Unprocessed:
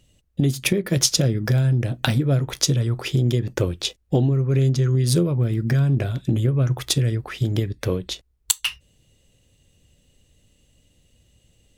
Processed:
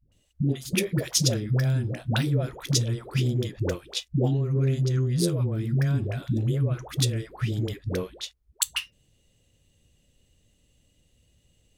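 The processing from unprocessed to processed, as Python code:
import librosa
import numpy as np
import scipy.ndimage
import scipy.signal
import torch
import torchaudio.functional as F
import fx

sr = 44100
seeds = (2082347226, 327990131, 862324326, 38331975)

y = fx.dispersion(x, sr, late='highs', ms=120.0, hz=410.0)
y = y * 10.0 ** (-5.0 / 20.0)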